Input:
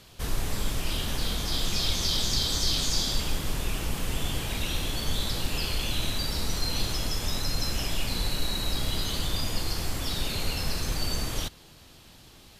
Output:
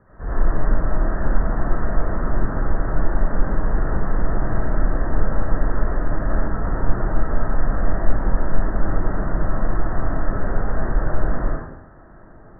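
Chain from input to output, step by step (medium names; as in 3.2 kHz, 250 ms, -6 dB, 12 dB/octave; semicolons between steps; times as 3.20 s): steep low-pass 1.8 kHz 96 dB/octave; 5.99–6.72 s: compressor with a negative ratio -29 dBFS, ratio -1; algorithmic reverb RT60 0.79 s, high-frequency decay 0.9×, pre-delay 40 ms, DRR -9.5 dB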